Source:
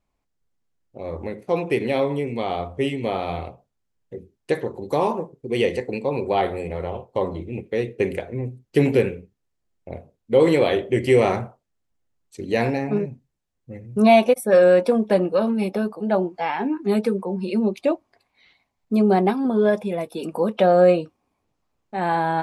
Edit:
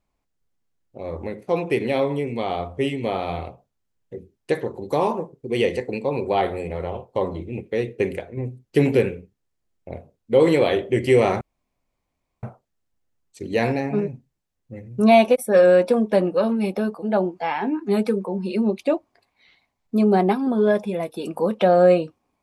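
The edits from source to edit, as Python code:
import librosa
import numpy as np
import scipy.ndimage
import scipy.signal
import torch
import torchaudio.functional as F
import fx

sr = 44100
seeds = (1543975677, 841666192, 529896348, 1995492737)

y = fx.edit(x, sr, fx.fade_out_to(start_s=7.9, length_s=0.47, curve='qsin', floor_db=-6.5),
    fx.insert_room_tone(at_s=11.41, length_s=1.02), tone=tone)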